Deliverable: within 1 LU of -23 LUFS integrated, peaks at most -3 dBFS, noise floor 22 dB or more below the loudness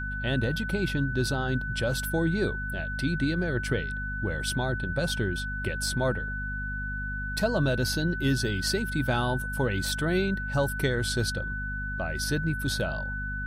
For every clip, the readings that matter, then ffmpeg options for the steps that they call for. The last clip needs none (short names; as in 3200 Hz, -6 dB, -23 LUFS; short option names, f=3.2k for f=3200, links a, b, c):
hum 50 Hz; harmonics up to 250 Hz; hum level -32 dBFS; steady tone 1500 Hz; tone level -33 dBFS; loudness -28.5 LUFS; peak -12.5 dBFS; loudness target -23.0 LUFS
-> -af "bandreject=f=50:t=h:w=4,bandreject=f=100:t=h:w=4,bandreject=f=150:t=h:w=4,bandreject=f=200:t=h:w=4,bandreject=f=250:t=h:w=4"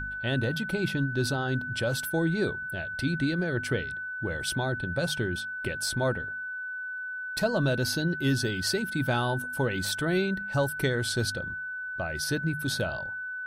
hum none; steady tone 1500 Hz; tone level -33 dBFS
-> -af "bandreject=f=1.5k:w=30"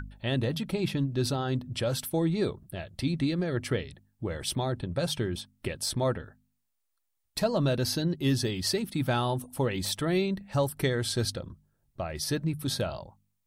steady tone none; loudness -30.0 LUFS; peak -14.5 dBFS; loudness target -23.0 LUFS
-> -af "volume=7dB"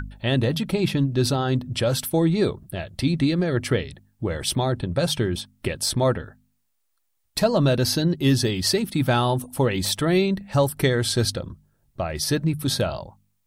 loudness -23.0 LUFS; peak -7.5 dBFS; noise floor -71 dBFS